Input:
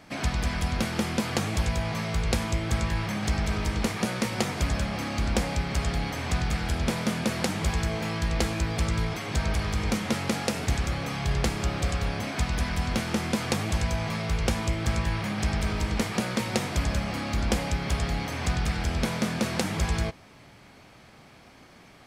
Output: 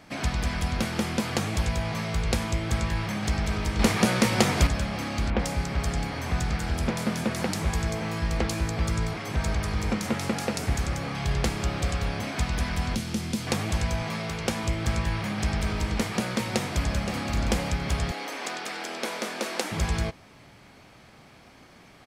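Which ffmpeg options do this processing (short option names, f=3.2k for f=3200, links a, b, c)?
-filter_complex "[0:a]asettb=1/sr,asplit=3[a][b][c];[a]atrim=end=3.794[d];[b]atrim=start=3.79:end=4.67,asetpts=PTS-STARTPTS,afade=t=in:d=0.004:c=qsin,afade=t=out:st=0.876:d=0.004:c=qsin,acontrast=54[e];[c]atrim=start=4.666[f];[d][e]acrossfade=d=0.004:c1=hsin:c2=qsin[g];[g][f]acrossfade=d=0.004:c1=qsin:c2=hsin,asettb=1/sr,asplit=3[h][i][j];[h]atrim=end=5.304[k];[i]atrim=start=5.3:end=11.15,asetpts=PTS-STARTPTS,afade=t=in:d=0.004:c=qsin,afade=t=out:st=5.846:d=0.004:c=qsin,acrossover=split=3300[l][m];[m]adelay=90[n];[l][n]amix=inputs=2:normalize=0,atrim=end_sample=257985[o];[j]atrim=start=11.146[p];[k][o]acrossfade=d=0.004:c1=hsin:c2=qsin[q];[q][p]acrossfade=d=0.004:c1=qsin:c2=hsin,asettb=1/sr,asplit=3[r][s][t];[r]atrim=end=12.954[u];[s]atrim=start=12.95:end=13.47,asetpts=PTS-STARTPTS,afade=t=in:d=0.004:c=qsin,afade=t=out:st=0.516:d=0.004:c=qsin,acrossover=split=330|3000[v][w][x];[w]acompressor=threshold=-46dB:ratio=2.5:attack=3.2:release=140:knee=2.83:detection=peak[y];[v][y][x]amix=inputs=3:normalize=0[z];[t]atrim=start=13.466[aa];[u][z]acrossfade=d=0.004:c1=hsin:c2=qsin[ab];[ab][aa]acrossfade=d=0.004:c1=qsin:c2=hsin,asettb=1/sr,asplit=3[ac][ad][ae];[ac]atrim=end=14.024[af];[ad]atrim=start=14.02:end=14.64,asetpts=PTS-STARTPTS,afade=t=in:d=0.004:c=qsin,afade=t=out:st=0.616:d=0.004:c=qsin,highpass=130[ag];[ae]atrim=start=14.636[ah];[af][ag]acrossfade=d=0.004:c1=hsin:c2=qsin[ai];[ai][ah]acrossfade=d=0.004:c1=qsin:c2=hsin,asplit=2[aj][ak];[ak]afade=t=in:st=16.55:d=0.01,afade=t=out:st=17.22:d=0.01,aecho=0:1:520|1040|1560:0.354813|0.106444|0.0319332[al];[aj][al]amix=inputs=2:normalize=0,asettb=1/sr,asplit=3[am][an][ao];[am]atrim=end=18.114[ap];[an]atrim=start=18.11:end=19.72,asetpts=PTS-STARTPTS,afade=t=in:d=0.004:c=qsin,afade=t=out:st=1.606:d=0.004:c=qsin,highpass=f=300:w=0.5412,highpass=f=300:w=1.3066[aq];[ao]atrim=start=19.716[ar];[ap][aq]acrossfade=d=0.004:c1=hsin:c2=qsin[as];[as][ar]acrossfade=d=0.004:c1=qsin:c2=hsin"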